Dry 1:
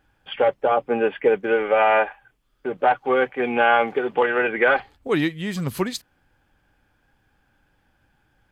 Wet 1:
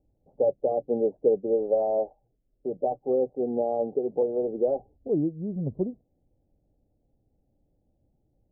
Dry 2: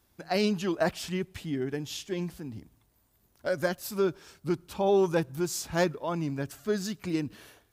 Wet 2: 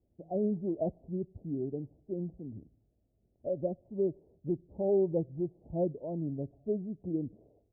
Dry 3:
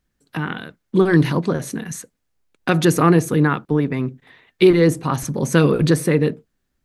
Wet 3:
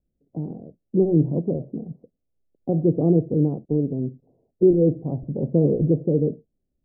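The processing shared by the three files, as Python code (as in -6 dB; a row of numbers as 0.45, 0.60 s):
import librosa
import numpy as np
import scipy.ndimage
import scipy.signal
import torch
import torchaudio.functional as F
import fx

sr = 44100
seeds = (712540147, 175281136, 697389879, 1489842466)

y = scipy.signal.sosfilt(scipy.signal.butter(8, 670.0, 'lowpass', fs=sr, output='sos'), x)
y = y * librosa.db_to_amplitude(-3.5)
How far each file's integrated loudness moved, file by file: -6.0, -4.5, -4.0 LU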